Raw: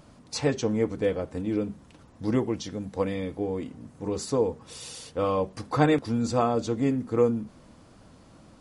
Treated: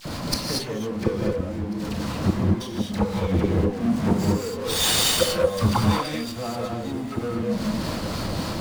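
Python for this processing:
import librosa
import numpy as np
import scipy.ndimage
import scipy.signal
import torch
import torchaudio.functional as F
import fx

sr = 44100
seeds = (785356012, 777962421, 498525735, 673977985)

p1 = fx.weighting(x, sr, curve='D', at=(5.75, 6.22))
p2 = fx.noise_reduce_blind(p1, sr, reduce_db=13)
p3 = fx.peak_eq(p2, sr, hz=4400.0, db=7.5, octaves=0.48)
p4 = fx.fold_sine(p3, sr, drive_db=13, ceiling_db=-3.5)
p5 = p3 + F.gain(torch.from_numpy(p4), -8.5).numpy()
p6 = fx.harmonic_tremolo(p5, sr, hz=3.6, depth_pct=50, crossover_hz=710.0)
p7 = fx.gate_flip(p6, sr, shuts_db=-17.0, range_db=-40)
p8 = fx.power_curve(p7, sr, exponent=0.5)
p9 = fx.dispersion(p8, sr, late='lows', ms=55.0, hz=1500.0)
p10 = p9 + fx.echo_feedback(p9, sr, ms=696, feedback_pct=49, wet_db=-22, dry=0)
p11 = fx.rev_gated(p10, sr, seeds[0], gate_ms=260, shape='rising', drr_db=-1.0)
p12 = fx.running_max(p11, sr, window=3)
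y = F.gain(torch.from_numpy(p12), 5.5).numpy()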